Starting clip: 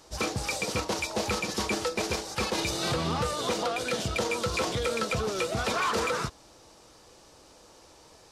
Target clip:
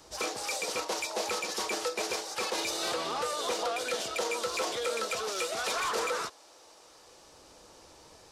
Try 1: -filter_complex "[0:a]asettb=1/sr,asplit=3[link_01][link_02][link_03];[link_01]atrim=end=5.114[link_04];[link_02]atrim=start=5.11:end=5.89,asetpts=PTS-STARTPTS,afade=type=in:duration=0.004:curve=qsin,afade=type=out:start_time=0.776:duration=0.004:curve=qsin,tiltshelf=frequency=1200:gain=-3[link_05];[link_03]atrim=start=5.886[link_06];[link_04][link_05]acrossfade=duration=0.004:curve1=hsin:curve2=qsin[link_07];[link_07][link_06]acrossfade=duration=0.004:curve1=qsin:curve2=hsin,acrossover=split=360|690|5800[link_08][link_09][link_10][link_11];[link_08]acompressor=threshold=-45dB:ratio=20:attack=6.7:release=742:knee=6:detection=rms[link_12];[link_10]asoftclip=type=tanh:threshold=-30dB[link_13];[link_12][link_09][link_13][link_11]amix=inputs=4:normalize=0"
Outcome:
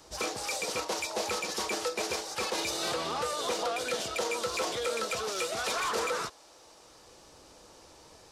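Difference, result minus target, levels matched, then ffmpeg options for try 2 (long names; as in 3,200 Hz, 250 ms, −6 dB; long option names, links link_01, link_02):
downward compressor: peak gain reduction −8 dB
-filter_complex "[0:a]asettb=1/sr,asplit=3[link_01][link_02][link_03];[link_01]atrim=end=5.114[link_04];[link_02]atrim=start=5.11:end=5.89,asetpts=PTS-STARTPTS,afade=type=in:duration=0.004:curve=qsin,afade=type=out:start_time=0.776:duration=0.004:curve=qsin,tiltshelf=frequency=1200:gain=-3[link_05];[link_03]atrim=start=5.886[link_06];[link_04][link_05]acrossfade=duration=0.004:curve1=hsin:curve2=qsin[link_07];[link_07][link_06]acrossfade=duration=0.004:curve1=qsin:curve2=hsin,acrossover=split=360|690|5800[link_08][link_09][link_10][link_11];[link_08]acompressor=threshold=-53.5dB:ratio=20:attack=6.7:release=742:knee=6:detection=rms[link_12];[link_10]asoftclip=type=tanh:threshold=-30dB[link_13];[link_12][link_09][link_13][link_11]amix=inputs=4:normalize=0"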